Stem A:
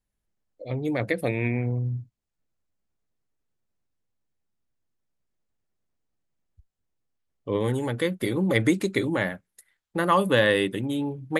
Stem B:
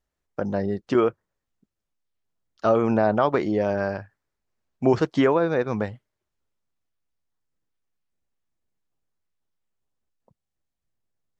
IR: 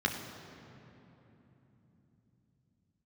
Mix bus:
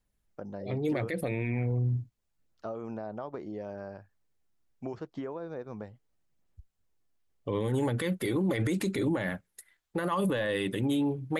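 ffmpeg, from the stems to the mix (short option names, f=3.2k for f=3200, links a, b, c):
-filter_complex "[0:a]aphaser=in_gain=1:out_gain=1:delay=3:decay=0.26:speed=0.77:type=sinusoidal,volume=2dB[a];[1:a]acrossover=split=1200|4600[b][c][d];[b]acompressor=threshold=-21dB:ratio=4[e];[c]acompressor=threshold=-46dB:ratio=4[f];[d]acompressor=threshold=-59dB:ratio=4[g];[e][f][g]amix=inputs=3:normalize=0,volume=-13.5dB,asplit=2[h][i];[i]apad=whole_len=502544[j];[a][j]sidechaincompress=threshold=-39dB:ratio=8:attack=16:release=432[k];[k][h]amix=inputs=2:normalize=0,alimiter=limit=-21.5dB:level=0:latency=1:release=26"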